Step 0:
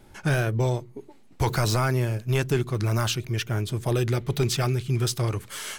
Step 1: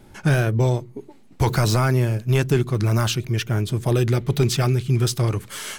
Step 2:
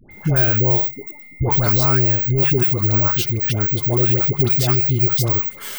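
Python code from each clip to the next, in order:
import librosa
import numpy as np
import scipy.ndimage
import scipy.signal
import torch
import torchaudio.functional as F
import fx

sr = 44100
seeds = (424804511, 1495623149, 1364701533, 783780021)

y1 = fx.peak_eq(x, sr, hz=190.0, db=4.0, octaves=1.8)
y1 = y1 * librosa.db_to_amplitude(2.5)
y2 = (np.kron(scipy.signal.resample_poly(y1, 1, 2), np.eye(2)[0]) * 2)[:len(y1)]
y2 = y2 + 10.0 ** (-41.0 / 20.0) * np.sin(2.0 * np.pi * 2100.0 * np.arange(len(y2)) / sr)
y2 = fx.dispersion(y2, sr, late='highs', ms=108.0, hz=890.0)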